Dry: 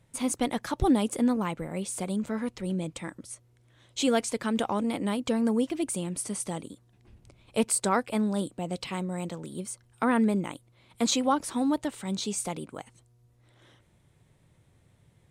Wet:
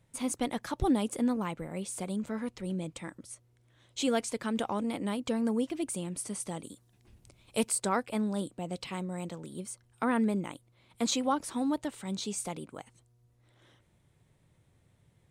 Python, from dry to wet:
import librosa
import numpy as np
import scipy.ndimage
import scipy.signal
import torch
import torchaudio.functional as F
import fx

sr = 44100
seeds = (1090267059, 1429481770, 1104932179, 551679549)

y = fx.high_shelf(x, sr, hz=4300.0, db=10.0, at=(6.63, 7.69))
y = y * 10.0 ** (-4.0 / 20.0)